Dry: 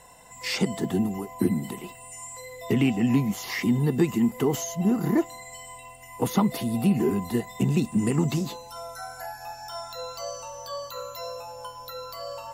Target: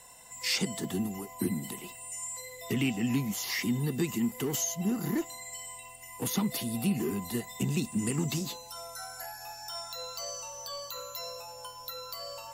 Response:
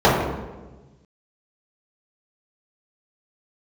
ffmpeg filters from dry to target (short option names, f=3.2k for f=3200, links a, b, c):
-filter_complex "[0:a]highshelf=f=2.4k:g=10.5,acrossover=split=380|1700[a][b][c];[b]asoftclip=type=tanh:threshold=-30.5dB[d];[a][d][c]amix=inputs=3:normalize=0,volume=-7dB"